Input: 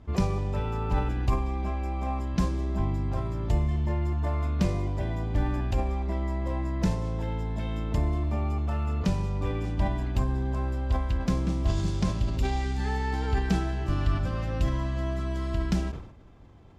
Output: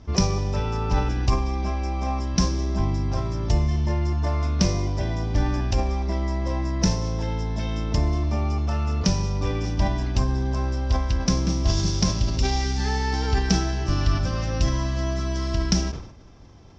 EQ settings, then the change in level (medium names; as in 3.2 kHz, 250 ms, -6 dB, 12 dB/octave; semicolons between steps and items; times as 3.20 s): resonant low-pass 5.6 kHz, resonance Q 8.4; +4.0 dB